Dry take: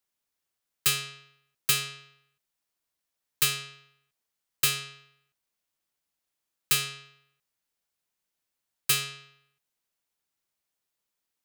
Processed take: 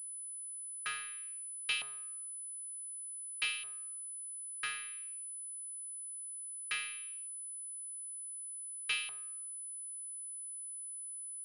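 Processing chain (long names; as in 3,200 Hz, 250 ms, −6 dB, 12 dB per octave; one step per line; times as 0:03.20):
auto-filter band-pass saw up 0.55 Hz 860–2,800 Hz
switching amplifier with a slow clock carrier 10,000 Hz
level −1.5 dB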